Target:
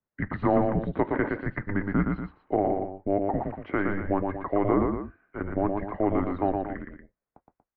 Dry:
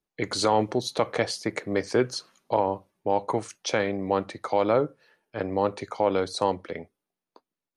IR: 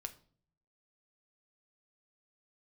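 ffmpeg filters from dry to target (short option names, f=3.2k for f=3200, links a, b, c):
-af "asubboost=boost=7.5:cutoff=110,highpass=f=180:t=q:w=0.5412,highpass=f=180:t=q:w=1.307,lowpass=f=2.2k:t=q:w=0.5176,lowpass=f=2.2k:t=q:w=0.7071,lowpass=f=2.2k:t=q:w=1.932,afreqshift=-200,aecho=1:1:116.6|236.2:0.631|0.282"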